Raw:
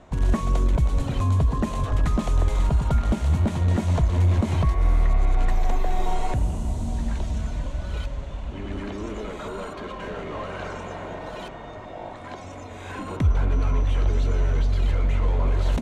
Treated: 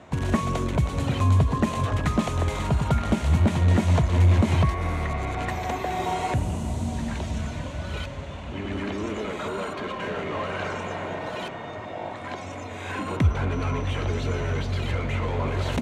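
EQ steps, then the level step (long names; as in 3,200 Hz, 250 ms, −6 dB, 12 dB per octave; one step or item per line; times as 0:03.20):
high-pass filter 74 Hz 24 dB per octave
parametric band 2,300 Hz +4 dB 1.1 octaves
+2.5 dB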